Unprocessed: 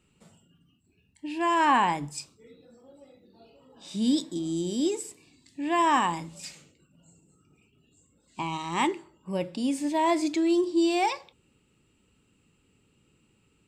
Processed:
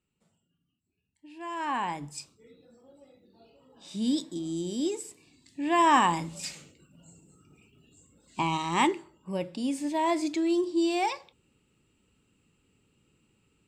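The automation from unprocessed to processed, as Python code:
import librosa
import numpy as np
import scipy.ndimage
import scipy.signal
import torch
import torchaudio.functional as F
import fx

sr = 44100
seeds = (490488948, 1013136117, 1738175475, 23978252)

y = fx.gain(x, sr, db=fx.line((1.29, -15.0), (2.17, -3.0), (5.03, -3.0), (6.32, 4.0), (8.48, 4.0), (9.44, -2.5)))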